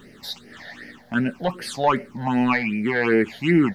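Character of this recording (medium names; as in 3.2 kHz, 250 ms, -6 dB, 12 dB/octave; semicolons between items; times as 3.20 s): phasing stages 8, 2.6 Hz, lowest notch 330–1100 Hz; a quantiser's noise floor 12-bit, dither none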